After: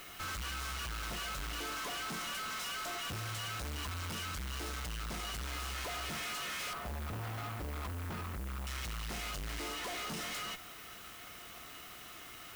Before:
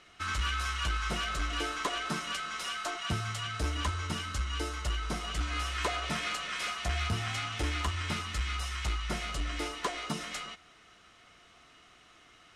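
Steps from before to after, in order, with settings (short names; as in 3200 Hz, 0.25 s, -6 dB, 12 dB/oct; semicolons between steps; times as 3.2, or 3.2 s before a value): 6.73–8.67 Chebyshev low-pass 910 Hz, order 2; tube stage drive 49 dB, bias 0.6; added noise blue -65 dBFS; gain +10 dB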